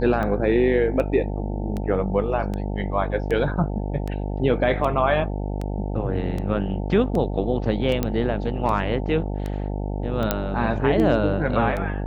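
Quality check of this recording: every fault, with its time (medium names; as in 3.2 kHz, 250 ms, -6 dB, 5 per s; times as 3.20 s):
buzz 50 Hz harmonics 18 -27 dBFS
tick 78 rpm -17 dBFS
8.03 s: pop -9 dBFS
10.31 s: pop -5 dBFS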